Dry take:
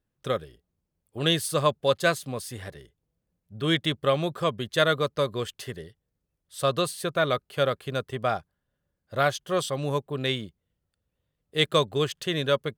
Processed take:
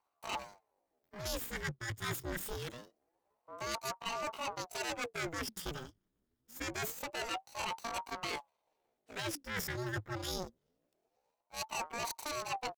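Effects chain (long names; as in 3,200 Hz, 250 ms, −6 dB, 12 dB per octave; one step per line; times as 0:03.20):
lower of the sound and its delayed copy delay 0.97 ms
reversed playback
downward compressor 16 to 1, threshold −34 dBFS, peak gain reduction 16.5 dB
reversed playback
pitch shifter +9 semitones
ring modulator whose carrier an LFO sweeps 520 Hz, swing 80%, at 0.25 Hz
level +2.5 dB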